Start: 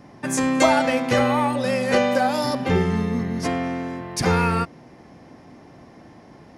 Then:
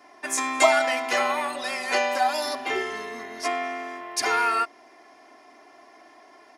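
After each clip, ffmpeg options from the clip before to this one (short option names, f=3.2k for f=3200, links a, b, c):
-af "highpass=640,aecho=1:1:2.9:0.83,volume=-1.5dB"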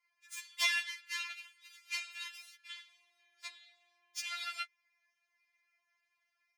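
-af "aeval=exprs='0.531*(cos(1*acos(clip(val(0)/0.531,-1,1)))-cos(1*PI/2))+0.0841*(cos(7*acos(clip(val(0)/0.531,-1,1)))-cos(7*PI/2))':c=same,highpass=f=2.2k:t=q:w=2.6,afftfilt=real='re*4*eq(mod(b,16),0)':imag='im*4*eq(mod(b,16),0)':win_size=2048:overlap=0.75,volume=-7dB"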